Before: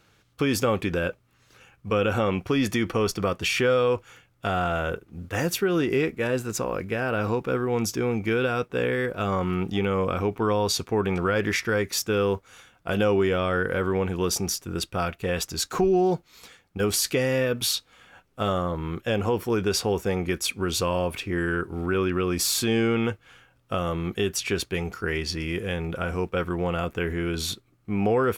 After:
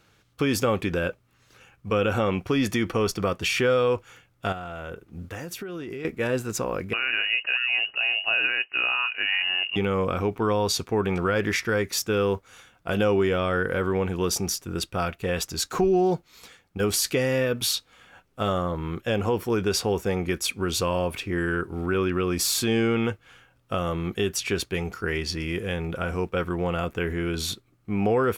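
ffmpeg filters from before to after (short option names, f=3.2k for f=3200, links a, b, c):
-filter_complex "[0:a]asettb=1/sr,asplit=3[a][b][c];[a]atrim=end=4.524[d];[b]atrim=start=4.52:end=6.05,asetpts=PTS-STARTPTS,afade=t=in:d=0.004:c=qsin,afade=t=out:st=1.526:d=0.004:c=qsin,acompressor=threshold=-31dB:ratio=12:attack=3.2:release=140:knee=1:detection=peak[e];[c]atrim=start=6.046[f];[d][e]acrossfade=d=0.004:c1=hsin:c2=qsin[g];[g][f]acrossfade=d=0.004:c1=qsin:c2=hsin,asettb=1/sr,asplit=3[h][i][j];[h]atrim=end=6.934[k];[i]atrim=start=6.93:end=9.76,asetpts=PTS-STARTPTS,afade=t=in:d=0.004:c=qsin,afade=t=out:st=2.826:d=0.004:c=qsin,lowpass=f=2.6k:t=q:w=0.5098,lowpass=f=2.6k:t=q:w=0.6013,lowpass=f=2.6k:t=q:w=0.9,lowpass=f=2.6k:t=q:w=2.563,afreqshift=-3000[l];[j]atrim=start=9.756[m];[k][l]acrossfade=d=0.004:c1=hsin:c2=qsin[n];[n][m]acrossfade=d=0.004:c1=qsin:c2=hsin"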